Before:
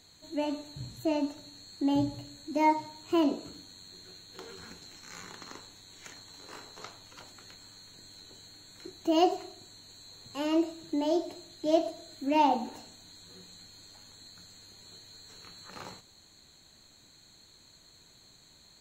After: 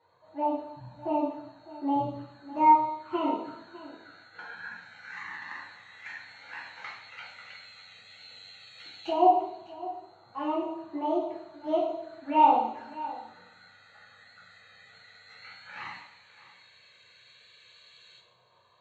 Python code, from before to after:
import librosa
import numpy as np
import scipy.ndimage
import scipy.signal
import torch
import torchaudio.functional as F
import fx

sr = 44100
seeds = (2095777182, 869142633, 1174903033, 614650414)

p1 = scipy.signal.sosfilt(scipy.signal.butter(2, 130.0, 'highpass', fs=sr, output='sos'), x)
p2 = fx.tilt_shelf(p1, sr, db=-6.5, hz=650.0)
p3 = fx.env_flanger(p2, sr, rest_ms=2.2, full_db=-29.0)
p4 = fx.filter_lfo_lowpass(p3, sr, shape='saw_up', hz=0.11, low_hz=910.0, high_hz=2900.0, q=3.0)
p5 = p4 + fx.echo_single(p4, sr, ms=604, db=-16.5, dry=0)
p6 = fx.rev_double_slope(p5, sr, seeds[0], early_s=0.57, late_s=1.5, knee_db=-18, drr_db=-5.5)
y = p6 * 10.0 ** (-4.0 / 20.0)